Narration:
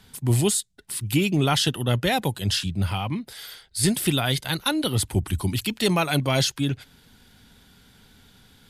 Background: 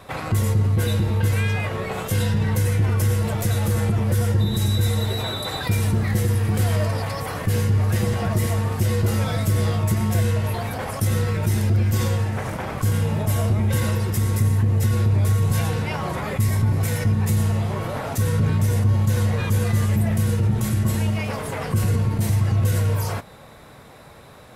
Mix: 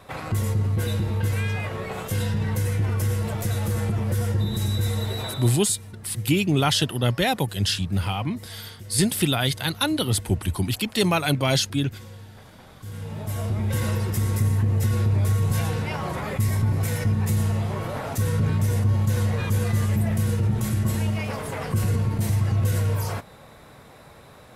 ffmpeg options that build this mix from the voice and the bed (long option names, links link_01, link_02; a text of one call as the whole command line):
ffmpeg -i stem1.wav -i stem2.wav -filter_complex "[0:a]adelay=5150,volume=0.5dB[link_01];[1:a]volume=14dB,afade=type=out:start_time=5.24:duration=0.38:silence=0.149624,afade=type=in:start_time=12.79:duration=1.15:silence=0.125893[link_02];[link_01][link_02]amix=inputs=2:normalize=0" out.wav